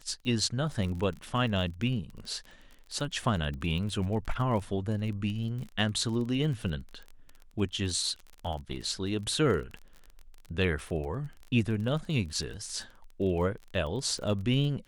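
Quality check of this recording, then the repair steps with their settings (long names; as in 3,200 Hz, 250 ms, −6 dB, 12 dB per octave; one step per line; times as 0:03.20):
surface crackle 28 per second −36 dBFS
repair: click removal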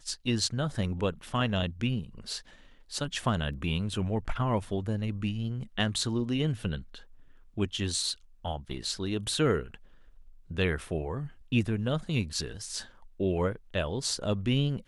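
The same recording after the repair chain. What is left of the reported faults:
none of them is left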